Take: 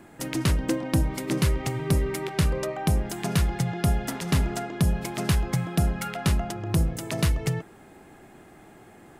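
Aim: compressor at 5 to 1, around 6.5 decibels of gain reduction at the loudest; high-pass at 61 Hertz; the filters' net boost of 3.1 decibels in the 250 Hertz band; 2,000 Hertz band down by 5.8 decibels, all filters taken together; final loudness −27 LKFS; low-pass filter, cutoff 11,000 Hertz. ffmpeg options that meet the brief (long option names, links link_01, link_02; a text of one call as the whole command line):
ffmpeg -i in.wav -af "highpass=61,lowpass=11000,equalizer=frequency=250:width_type=o:gain=5,equalizer=frequency=2000:width_type=o:gain=-7.5,acompressor=threshold=-24dB:ratio=5,volume=3dB" out.wav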